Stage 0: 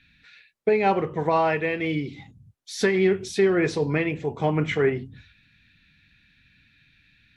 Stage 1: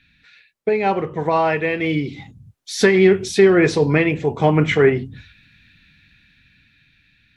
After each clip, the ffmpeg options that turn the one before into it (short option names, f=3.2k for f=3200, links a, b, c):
-af "dynaudnorm=f=320:g=11:m=8dB,volume=1.5dB"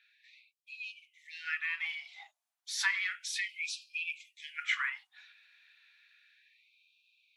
-af "afftfilt=real='re*gte(b*sr/1024,600*pow(2400/600,0.5+0.5*sin(2*PI*0.32*pts/sr)))':imag='im*gte(b*sr/1024,600*pow(2400/600,0.5+0.5*sin(2*PI*0.32*pts/sr)))':win_size=1024:overlap=0.75,volume=-9dB"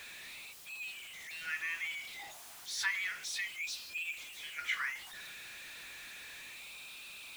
-af "aeval=exprs='val(0)+0.5*0.0112*sgn(val(0))':c=same,volume=-4.5dB"